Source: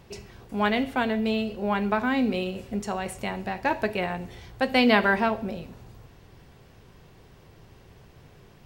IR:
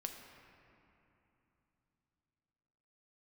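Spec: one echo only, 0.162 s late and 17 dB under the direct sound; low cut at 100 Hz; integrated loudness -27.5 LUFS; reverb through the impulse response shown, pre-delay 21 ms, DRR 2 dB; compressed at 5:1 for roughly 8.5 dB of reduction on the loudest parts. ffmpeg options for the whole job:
-filter_complex "[0:a]highpass=100,acompressor=threshold=-25dB:ratio=5,aecho=1:1:162:0.141,asplit=2[a][b];[1:a]atrim=start_sample=2205,adelay=21[c];[b][c]afir=irnorm=-1:irlink=0,volume=0dB[d];[a][d]amix=inputs=2:normalize=0,volume=1.5dB"

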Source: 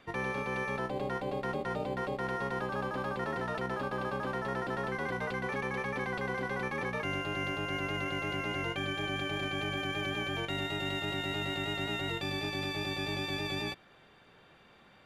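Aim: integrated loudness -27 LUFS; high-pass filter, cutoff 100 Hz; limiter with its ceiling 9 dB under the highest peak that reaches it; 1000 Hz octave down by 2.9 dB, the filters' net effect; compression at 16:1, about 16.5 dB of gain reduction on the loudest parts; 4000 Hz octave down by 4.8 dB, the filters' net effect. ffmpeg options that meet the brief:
-af "highpass=100,equalizer=f=1k:t=o:g=-3.5,equalizer=f=4k:t=o:g=-6.5,acompressor=threshold=-49dB:ratio=16,volume=28dB,alimiter=limit=-18dB:level=0:latency=1"

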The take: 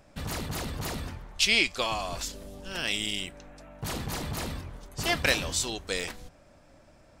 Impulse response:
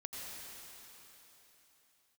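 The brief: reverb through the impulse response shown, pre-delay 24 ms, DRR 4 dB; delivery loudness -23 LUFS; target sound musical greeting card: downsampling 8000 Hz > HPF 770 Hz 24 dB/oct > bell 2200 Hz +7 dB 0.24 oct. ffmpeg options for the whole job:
-filter_complex "[0:a]asplit=2[a][b];[1:a]atrim=start_sample=2205,adelay=24[c];[b][c]afir=irnorm=-1:irlink=0,volume=-3.5dB[d];[a][d]amix=inputs=2:normalize=0,aresample=8000,aresample=44100,highpass=f=770:w=0.5412,highpass=f=770:w=1.3066,equalizer=f=2.2k:t=o:w=0.24:g=7,volume=4dB"

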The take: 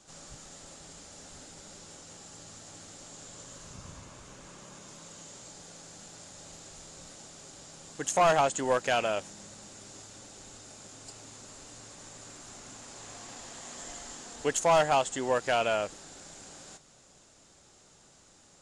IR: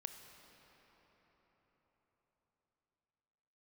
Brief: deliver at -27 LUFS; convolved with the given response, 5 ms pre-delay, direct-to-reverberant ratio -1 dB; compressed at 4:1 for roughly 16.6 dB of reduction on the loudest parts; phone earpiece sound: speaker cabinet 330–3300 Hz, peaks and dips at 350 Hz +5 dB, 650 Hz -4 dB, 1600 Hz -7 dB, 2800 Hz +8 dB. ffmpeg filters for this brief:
-filter_complex "[0:a]acompressor=threshold=-41dB:ratio=4,asplit=2[a][b];[1:a]atrim=start_sample=2205,adelay=5[c];[b][c]afir=irnorm=-1:irlink=0,volume=4.5dB[d];[a][d]amix=inputs=2:normalize=0,highpass=330,equalizer=f=350:t=q:w=4:g=5,equalizer=f=650:t=q:w=4:g=-4,equalizer=f=1.6k:t=q:w=4:g=-7,equalizer=f=2.8k:t=q:w=4:g=8,lowpass=f=3.3k:w=0.5412,lowpass=f=3.3k:w=1.3066,volume=18.5dB"

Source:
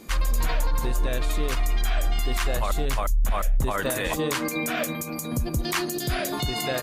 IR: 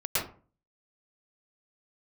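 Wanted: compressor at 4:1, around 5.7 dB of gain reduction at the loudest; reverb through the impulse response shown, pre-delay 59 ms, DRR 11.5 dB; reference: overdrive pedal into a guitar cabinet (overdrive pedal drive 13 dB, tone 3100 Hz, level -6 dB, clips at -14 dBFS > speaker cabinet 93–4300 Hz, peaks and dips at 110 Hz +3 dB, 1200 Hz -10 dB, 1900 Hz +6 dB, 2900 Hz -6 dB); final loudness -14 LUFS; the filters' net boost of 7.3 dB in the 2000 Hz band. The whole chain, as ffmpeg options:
-filter_complex "[0:a]equalizer=f=2k:t=o:g=7,acompressor=threshold=-25dB:ratio=4,asplit=2[a][b];[1:a]atrim=start_sample=2205,adelay=59[c];[b][c]afir=irnorm=-1:irlink=0,volume=-21dB[d];[a][d]amix=inputs=2:normalize=0,asplit=2[e][f];[f]highpass=f=720:p=1,volume=13dB,asoftclip=type=tanh:threshold=-14dB[g];[e][g]amix=inputs=2:normalize=0,lowpass=f=3.1k:p=1,volume=-6dB,highpass=93,equalizer=f=110:t=q:w=4:g=3,equalizer=f=1.2k:t=q:w=4:g=-10,equalizer=f=1.9k:t=q:w=4:g=6,equalizer=f=2.9k:t=q:w=4:g=-6,lowpass=f=4.3k:w=0.5412,lowpass=f=4.3k:w=1.3066,volume=12.5dB"

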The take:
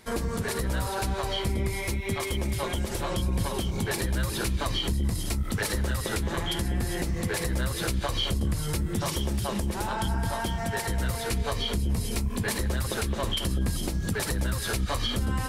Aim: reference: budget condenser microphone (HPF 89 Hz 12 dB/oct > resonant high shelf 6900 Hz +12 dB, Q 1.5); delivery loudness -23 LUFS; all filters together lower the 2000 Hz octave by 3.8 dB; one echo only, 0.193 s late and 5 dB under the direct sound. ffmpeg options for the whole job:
-af "highpass=89,equalizer=f=2k:t=o:g=-4,highshelf=f=6.9k:t=q:w=1.5:g=12,aecho=1:1:193:0.562,volume=1dB"

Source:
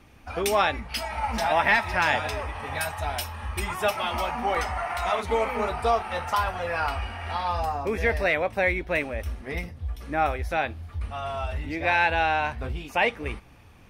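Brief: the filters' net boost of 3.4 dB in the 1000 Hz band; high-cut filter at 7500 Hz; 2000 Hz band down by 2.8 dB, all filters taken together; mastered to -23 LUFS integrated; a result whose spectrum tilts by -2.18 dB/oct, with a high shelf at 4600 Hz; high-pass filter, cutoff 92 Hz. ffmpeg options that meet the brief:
-af "highpass=92,lowpass=7.5k,equalizer=f=1k:t=o:g=5.5,equalizer=f=2k:t=o:g=-6.5,highshelf=f=4.6k:g=6,volume=2dB"

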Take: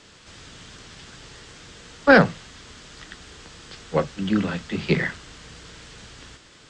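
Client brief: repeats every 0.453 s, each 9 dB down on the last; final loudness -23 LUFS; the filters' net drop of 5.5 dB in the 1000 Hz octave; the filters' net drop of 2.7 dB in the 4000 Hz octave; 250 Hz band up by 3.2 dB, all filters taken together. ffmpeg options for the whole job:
-af "equalizer=f=250:t=o:g=4.5,equalizer=f=1k:t=o:g=-8.5,equalizer=f=4k:t=o:g=-3,aecho=1:1:453|906|1359|1812:0.355|0.124|0.0435|0.0152,volume=-0.5dB"

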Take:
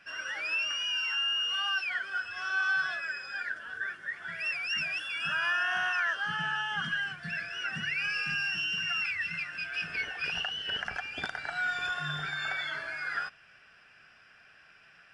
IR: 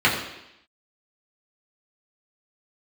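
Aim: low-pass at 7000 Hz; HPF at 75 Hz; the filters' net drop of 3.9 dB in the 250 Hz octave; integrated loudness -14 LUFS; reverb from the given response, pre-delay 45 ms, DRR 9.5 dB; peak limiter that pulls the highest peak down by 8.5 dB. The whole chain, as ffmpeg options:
-filter_complex "[0:a]highpass=75,lowpass=7k,equalizer=f=250:t=o:g=-7.5,alimiter=level_in=4.5dB:limit=-24dB:level=0:latency=1,volume=-4.5dB,asplit=2[a][b];[1:a]atrim=start_sample=2205,adelay=45[c];[b][c]afir=irnorm=-1:irlink=0,volume=-29.5dB[d];[a][d]amix=inputs=2:normalize=0,volume=20dB"

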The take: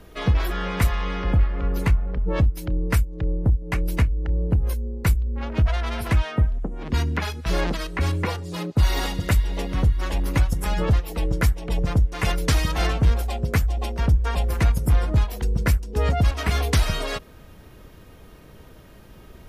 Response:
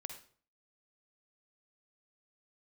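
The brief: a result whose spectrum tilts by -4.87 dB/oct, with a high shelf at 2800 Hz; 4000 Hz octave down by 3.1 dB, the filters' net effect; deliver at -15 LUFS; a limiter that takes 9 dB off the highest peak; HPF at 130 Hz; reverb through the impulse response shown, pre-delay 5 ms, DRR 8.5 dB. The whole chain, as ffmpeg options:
-filter_complex "[0:a]highpass=130,highshelf=f=2.8k:g=4.5,equalizer=f=4k:t=o:g=-8,alimiter=limit=-18dB:level=0:latency=1,asplit=2[a][b];[1:a]atrim=start_sample=2205,adelay=5[c];[b][c]afir=irnorm=-1:irlink=0,volume=-5.5dB[d];[a][d]amix=inputs=2:normalize=0,volume=15.5dB"

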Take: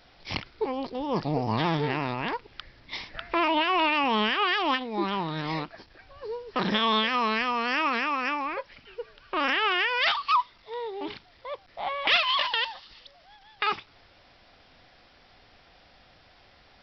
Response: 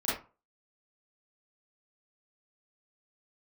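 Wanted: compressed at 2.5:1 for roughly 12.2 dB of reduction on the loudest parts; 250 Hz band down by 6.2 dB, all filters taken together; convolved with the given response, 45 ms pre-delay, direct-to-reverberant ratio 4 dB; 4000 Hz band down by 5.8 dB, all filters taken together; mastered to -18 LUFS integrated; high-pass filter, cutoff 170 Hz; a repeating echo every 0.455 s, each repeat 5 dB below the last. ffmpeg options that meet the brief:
-filter_complex "[0:a]highpass=170,equalizer=f=250:t=o:g=-7,equalizer=f=4k:t=o:g=-8.5,acompressor=threshold=-39dB:ratio=2.5,aecho=1:1:455|910|1365|1820|2275|2730|3185:0.562|0.315|0.176|0.0988|0.0553|0.031|0.0173,asplit=2[a][b];[1:a]atrim=start_sample=2205,adelay=45[c];[b][c]afir=irnorm=-1:irlink=0,volume=-12dB[d];[a][d]amix=inputs=2:normalize=0,volume=18dB"

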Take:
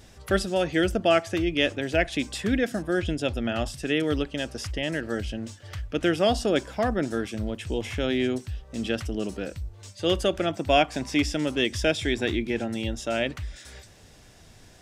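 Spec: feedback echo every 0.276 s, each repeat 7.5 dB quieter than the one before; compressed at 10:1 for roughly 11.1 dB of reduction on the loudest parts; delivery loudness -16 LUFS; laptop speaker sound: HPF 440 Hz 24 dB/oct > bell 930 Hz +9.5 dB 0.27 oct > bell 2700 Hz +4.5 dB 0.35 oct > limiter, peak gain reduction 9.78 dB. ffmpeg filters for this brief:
-af "acompressor=threshold=-27dB:ratio=10,highpass=f=440:w=0.5412,highpass=f=440:w=1.3066,equalizer=f=930:t=o:w=0.27:g=9.5,equalizer=f=2.7k:t=o:w=0.35:g=4.5,aecho=1:1:276|552|828|1104|1380:0.422|0.177|0.0744|0.0312|0.0131,volume=21dB,alimiter=limit=-5.5dB:level=0:latency=1"

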